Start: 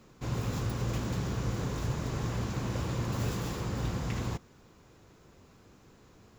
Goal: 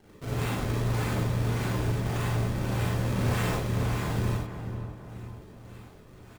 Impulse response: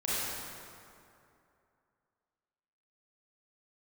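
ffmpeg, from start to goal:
-filter_complex "[0:a]asplit=2[s0][s1];[s1]alimiter=level_in=1.78:limit=0.0631:level=0:latency=1,volume=0.562,volume=0.708[s2];[s0][s2]amix=inputs=2:normalize=0,crystalizer=i=4:c=0,acrusher=samples=35:mix=1:aa=0.000001:lfo=1:lforange=56:lforate=1.7,asplit=2[s3][s4];[s4]adelay=488,lowpass=f=1300:p=1,volume=0.398,asplit=2[s5][s6];[s6]adelay=488,lowpass=f=1300:p=1,volume=0.51,asplit=2[s7][s8];[s8]adelay=488,lowpass=f=1300:p=1,volume=0.51,asplit=2[s9][s10];[s10]adelay=488,lowpass=f=1300:p=1,volume=0.51,asplit=2[s11][s12];[s12]adelay=488,lowpass=f=1300:p=1,volume=0.51,asplit=2[s13][s14];[s14]adelay=488,lowpass=f=1300:p=1,volume=0.51[s15];[s3][s5][s7][s9][s11][s13][s15]amix=inputs=7:normalize=0[s16];[1:a]atrim=start_sample=2205,atrim=end_sample=4410[s17];[s16][s17]afir=irnorm=-1:irlink=0,volume=0.447"

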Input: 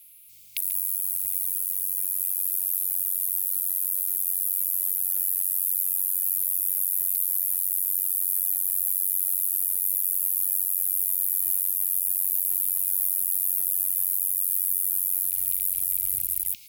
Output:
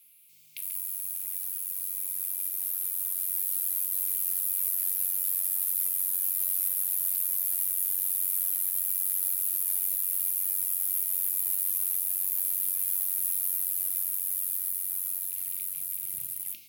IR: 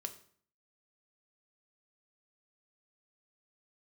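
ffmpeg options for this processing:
-filter_complex "[0:a]highpass=200,highshelf=f=2300:g=-9.5,alimiter=limit=0.075:level=0:latency=1:release=50,dynaudnorm=f=510:g=11:m=1.88,acrusher=bits=5:mode=log:mix=0:aa=0.000001[s0];[1:a]atrim=start_sample=2205[s1];[s0][s1]afir=irnorm=-1:irlink=0,volume=1.68"

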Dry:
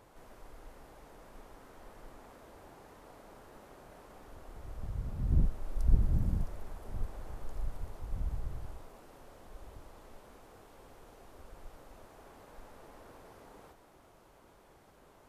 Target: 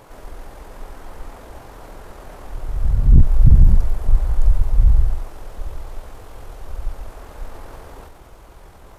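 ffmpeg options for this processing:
-af "asubboost=boost=3:cutoff=110,bandreject=f=78.97:t=h:w=4,bandreject=f=157.94:t=h:w=4,bandreject=f=236.91:t=h:w=4,bandreject=f=315.88:t=h:w=4,bandreject=f=394.85:t=h:w=4,bandreject=f=473.82:t=h:w=4,bandreject=f=552.79:t=h:w=4,bandreject=f=631.76:t=h:w=4,bandreject=f=710.73:t=h:w=4,atempo=1.7,aeval=exprs='0.708*sin(PI/2*3.55*val(0)/0.708)':c=same"

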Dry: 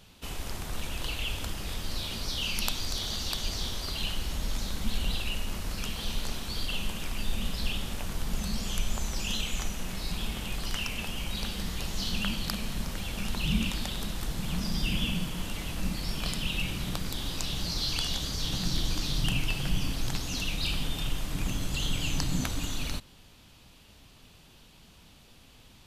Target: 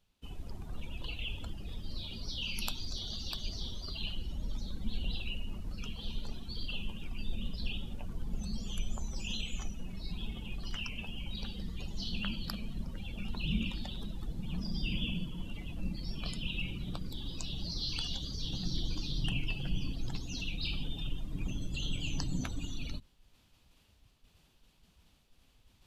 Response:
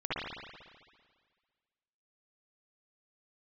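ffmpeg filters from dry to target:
-af "afftdn=nr=18:nf=-37,areverse,acompressor=mode=upward:threshold=0.00398:ratio=2.5,areverse,volume=0.562"

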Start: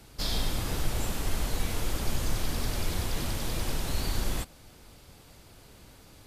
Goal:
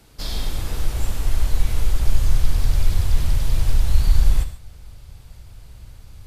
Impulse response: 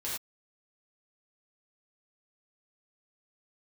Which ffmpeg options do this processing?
-filter_complex "[0:a]asubboost=boost=8.5:cutoff=99,asplit=2[s0][s1];[1:a]atrim=start_sample=2205,adelay=34[s2];[s1][s2]afir=irnorm=-1:irlink=0,volume=0.237[s3];[s0][s3]amix=inputs=2:normalize=0"

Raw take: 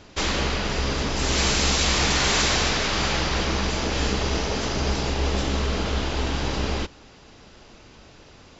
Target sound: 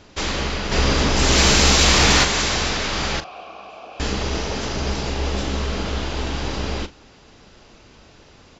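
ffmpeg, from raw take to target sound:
-filter_complex "[0:a]asplit=3[s0][s1][s2];[s0]afade=t=out:st=0.71:d=0.02[s3];[s1]acontrast=82,afade=t=in:st=0.71:d=0.02,afade=t=out:st=2.23:d=0.02[s4];[s2]afade=t=in:st=2.23:d=0.02[s5];[s3][s4][s5]amix=inputs=3:normalize=0,asettb=1/sr,asplit=3[s6][s7][s8];[s6]atrim=end=3.204[s9];[s7]atrim=start=3.2:end=4,asetpts=PTS-STARTPTS,afade=t=in:d=0.004:c=qsin,afade=t=out:st=0.796:d=0.004:c=qsin,asplit=3[s10][s11][s12];[s10]bandpass=f=730:t=q:w=8,volume=1[s13];[s11]bandpass=f=1090:t=q:w=8,volume=0.501[s14];[s12]bandpass=f=2440:t=q:w=8,volume=0.355[s15];[s13][s14][s15]amix=inputs=3:normalize=0[s16];[s8]atrim=start=3.996[s17];[s9][s16]acrossfade=d=0.004:c1=hsin:c2=qsin[s18];[s18][s17]acrossfade=d=0.004:c1=qsin:c2=hsin,asplit=2[s19][s20];[s20]adelay=40,volume=0.211[s21];[s19][s21]amix=inputs=2:normalize=0"

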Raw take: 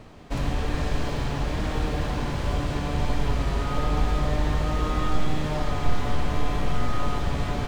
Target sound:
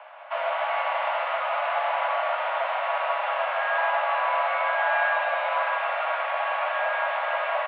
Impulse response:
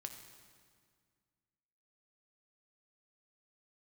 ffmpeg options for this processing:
-filter_complex "[0:a]highpass=f=210:t=q:w=0.5412,highpass=f=210:t=q:w=1.307,lowpass=f=2600:t=q:w=0.5176,lowpass=f=2600:t=q:w=0.7071,lowpass=f=2600:t=q:w=1.932,afreqshift=390,asplit=2[s0][s1];[s1]adelay=151.6,volume=0.501,highshelf=f=4000:g=-3.41[s2];[s0][s2]amix=inputs=2:normalize=0[s3];[1:a]atrim=start_sample=2205[s4];[s3][s4]afir=irnorm=-1:irlink=0,volume=2.82"

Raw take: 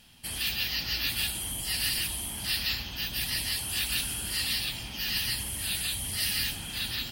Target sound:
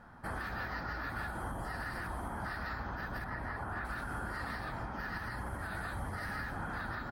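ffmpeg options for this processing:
-filter_complex "[0:a]asettb=1/sr,asplit=3[s0][s1][s2];[s0]atrim=end=1.434[s3];[s1]atrim=start=1.43:end=1.83,asetpts=PTS-STARTPTS,afade=t=in:d=0.004:c=qsin,afade=t=out:st=0.396:d=0.004:c=qsin,bandreject=f=2200:w=10[s4];[s2]atrim=start=1.826[s5];[s3][s4]acrossfade=d=0.004:c1=hsin:c2=qsin[s6];[s6][s5]acrossfade=d=0.004:c1=qsin:c2=hsin,asettb=1/sr,asplit=3[s7][s8][s9];[s7]atrim=end=3.244[s10];[s8]atrim=start=3.24:end=3.85,asetpts=PTS-STARTPTS,afade=t=in:d=0.004:c=qsin,afade=t=out:st=0.606:d=0.004:c=qsin,acrossover=split=2600[s11][s12];[s12]acompressor=threshold=0.00794:ratio=4:attack=1:release=60[s13];[s11][s13]amix=inputs=2:normalize=0[s14];[s9]atrim=start=3.846[s15];[s10][s14]acrossfade=d=0.004:c1=hsin:c2=qsin[s16];[s16][s15]acrossfade=d=0.004:c1=qsin:c2=hsin,firequalizer=gain_entry='entry(160,0);entry(570,7);entry(1400,12);entry(2800,-28);entry(3900,-22);entry(14000,-28)':delay=0.05:min_phase=1,alimiter=level_in=2.99:limit=0.0631:level=0:latency=1:release=218,volume=0.335,volume=1.5"

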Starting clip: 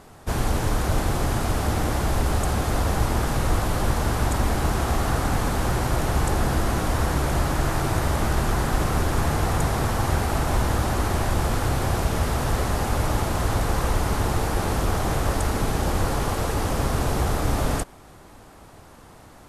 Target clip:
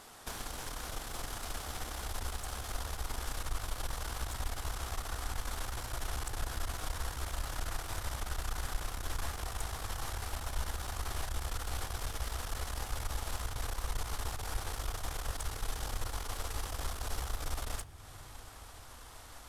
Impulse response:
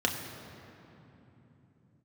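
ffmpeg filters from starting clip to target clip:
-filter_complex "[0:a]tiltshelf=f=780:g=-8.5,acompressor=threshold=0.0158:ratio=4,asubboost=boost=7:cutoff=60,aeval=exprs='(tanh(20*val(0)+0.75)-tanh(0.75))/20':c=same,asplit=2[s0][s1];[1:a]atrim=start_sample=2205,lowshelf=f=140:g=11[s2];[s1][s2]afir=irnorm=-1:irlink=0,volume=0.0841[s3];[s0][s3]amix=inputs=2:normalize=0,volume=0.75"

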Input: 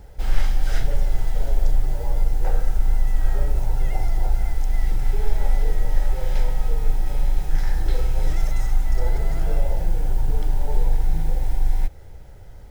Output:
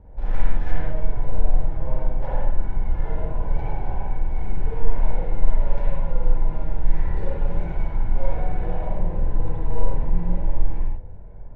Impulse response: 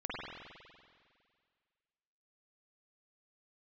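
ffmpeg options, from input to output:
-filter_complex "[0:a]asetrate=48510,aresample=44100,bandreject=f=60:t=h:w=6,bandreject=f=120:t=h:w=6,adynamicsmooth=sensitivity=2:basefreq=990[s0];[1:a]atrim=start_sample=2205,afade=t=out:st=0.25:d=0.01,atrim=end_sample=11466[s1];[s0][s1]afir=irnorm=-1:irlink=0"

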